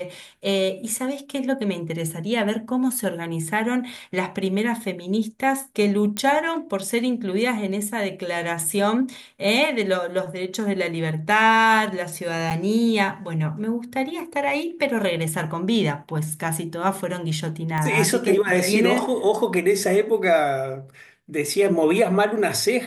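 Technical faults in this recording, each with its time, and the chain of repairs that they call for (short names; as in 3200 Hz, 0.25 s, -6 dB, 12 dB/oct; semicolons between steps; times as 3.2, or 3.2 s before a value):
6.17 pop -11 dBFS
12.5–12.51 gap 8 ms
17.78 pop -14 dBFS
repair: de-click; interpolate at 12.5, 8 ms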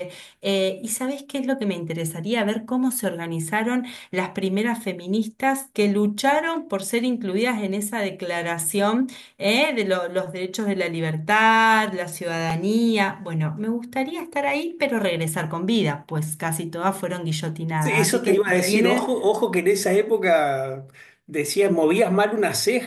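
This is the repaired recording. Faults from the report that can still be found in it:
17.78 pop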